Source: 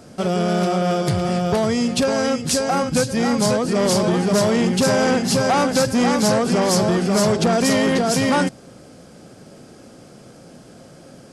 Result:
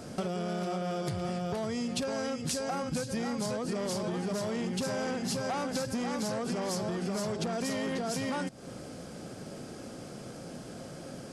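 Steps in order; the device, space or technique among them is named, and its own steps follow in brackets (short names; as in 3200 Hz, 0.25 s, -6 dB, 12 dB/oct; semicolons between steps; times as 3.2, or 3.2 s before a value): serial compression, leveller first (compressor 2:1, threshold -20 dBFS, peak gain reduction 4.5 dB; compressor 6:1, threshold -31 dBFS, peak gain reduction 13 dB)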